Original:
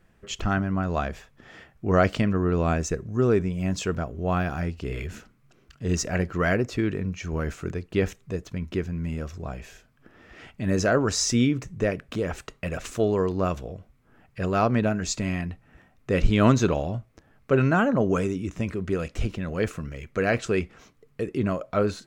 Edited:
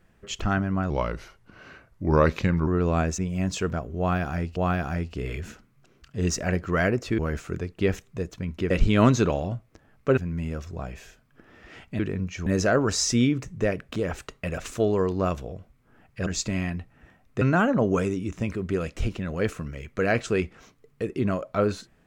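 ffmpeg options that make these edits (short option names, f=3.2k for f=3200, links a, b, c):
-filter_complex "[0:a]asplit=12[a][b][c][d][e][f][g][h][i][j][k][l];[a]atrim=end=0.904[m];[b]atrim=start=0.9:end=2.39,asetpts=PTS-STARTPTS,asetrate=37044,aresample=44100[n];[c]atrim=start=2.386:end=2.902[o];[d]atrim=start=3.428:end=4.812[p];[e]atrim=start=4.228:end=6.852[q];[f]atrim=start=7.318:end=8.842[r];[g]atrim=start=16.128:end=17.602[s];[h]atrim=start=8.838:end=10.662[t];[i]atrim=start=6.848:end=7.322[u];[j]atrim=start=10.658:end=14.462[v];[k]atrim=start=14.978:end=16.132[w];[l]atrim=start=17.598[x];[m][n]acrossfade=d=0.004:c1=hsin:c2=hsin[y];[y][o]acrossfade=d=0.004:c1=hsin:c2=hsin[z];[z][p]acrossfade=d=0.004:c1=hsin:c2=hsin[aa];[aa][q]acrossfade=d=0.004:c1=hsin:c2=hsin[ab];[ab][r]acrossfade=d=0.004:c1=hsin:c2=hsin[ac];[ac][s]acrossfade=d=0.004:c1=hsin:c2=hsin[ad];[ad][t]acrossfade=d=0.004:c1=hsin:c2=hsin[ae];[ae][u]acrossfade=d=0.004:c1=hsin:c2=hsin[af];[af][v]acrossfade=d=0.004:c1=hsin:c2=hsin[ag];[ag][w]acrossfade=d=0.004:c1=hsin:c2=hsin[ah];[ah][x]acrossfade=d=0.004:c1=hsin:c2=hsin"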